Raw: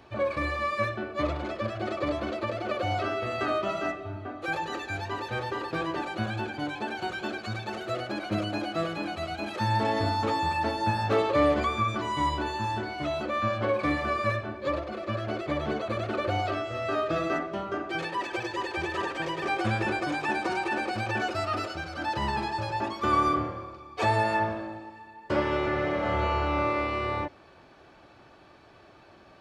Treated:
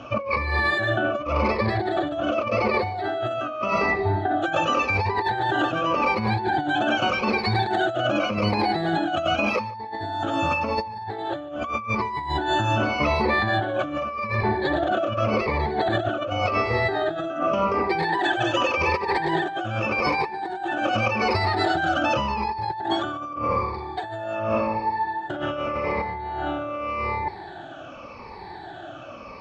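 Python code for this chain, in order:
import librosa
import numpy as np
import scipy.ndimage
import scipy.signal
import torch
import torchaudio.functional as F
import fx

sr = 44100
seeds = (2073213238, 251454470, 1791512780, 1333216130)

y = fx.spec_ripple(x, sr, per_octave=0.88, drift_hz=-0.86, depth_db=18)
y = scipy.signal.sosfilt(scipy.signal.butter(2, 5200.0, 'lowpass', fs=sr, output='sos'), y)
y = fx.peak_eq(y, sr, hz=810.0, db=7.0, octaves=0.46)
y = fx.over_compress(y, sr, threshold_db=-30.0, ratio=-1.0)
y = y + 10.0 ** (-23.0 / 20.0) * np.pad(y, (int(147 * sr / 1000.0), 0))[:len(y)]
y = F.gain(torch.from_numpy(y), 4.5).numpy()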